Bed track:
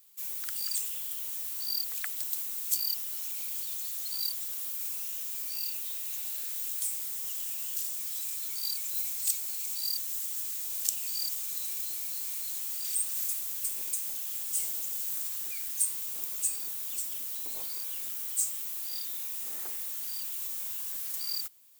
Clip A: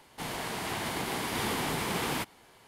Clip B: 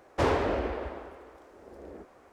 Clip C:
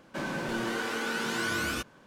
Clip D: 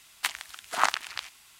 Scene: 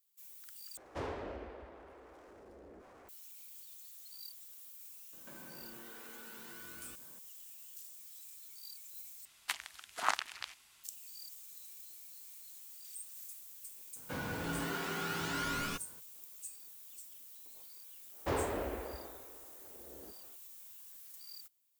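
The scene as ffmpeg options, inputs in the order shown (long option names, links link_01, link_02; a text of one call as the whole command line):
ffmpeg -i bed.wav -i cue0.wav -i cue1.wav -i cue2.wav -i cue3.wav -filter_complex "[2:a]asplit=2[link_01][link_02];[3:a]asplit=2[link_03][link_04];[0:a]volume=-17dB[link_05];[link_01]acompressor=mode=upward:threshold=-33dB:ratio=4:attack=0.33:release=21:knee=2.83:detection=peak[link_06];[link_03]acompressor=threshold=-44dB:ratio=6:attack=3.2:release=140:knee=1:detection=peak[link_07];[link_04]afreqshift=-62[link_08];[link_05]asplit=3[link_09][link_10][link_11];[link_09]atrim=end=0.774[link_12];[link_06]atrim=end=2.32,asetpts=PTS-STARTPTS,volume=-15dB[link_13];[link_10]atrim=start=3.086:end=9.254[link_14];[4:a]atrim=end=1.59,asetpts=PTS-STARTPTS,volume=-8dB[link_15];[link_11]atrim=start=10.836[link_16];[link_07]atrim=end=2.06,asetpts=PTS-STARTPTS,volume=-7.5dB,afade=type=in:duration=0.004:curve=hsin,afade=type=out:start_time=2.056:duration=0.004:curve=hsin,adelay=226233S[link_17];[link_08]atrim=end=2.06,asetpts=PTS-STARTPTS,volume=-6dB,afade=type=in:duration=0.02,afade=type=out:start_time=2.04:duration=0.02,adelay=13950[link_18];[link_02]atrim=end=2.32,asetpts=PTS-STARTPTS,volume=-9dB,afade=type=in:duration=0.1,afade=type=out:start_time=2.22:duration=0.1,adelay=18080[link_19];[link_12][link_13]acrossfade=duration=0.004:curve1=hsin:curve2=hsin[link_20];[link_20][link_14]acrossfade=duration=0.004:curve1=hsin:curve2=hsin[link_21];[link_21][link_15]acrossfade=duration=0.004:curve1=hsin:curve2=hsin[link_22];[link_22][link_16]acrossfade=duration=0.004:curve1=hsin:curve2=hsin[link_23];[link_23][link_17][link_18][link_19]amix=inputs=4:normalize=0" out.wav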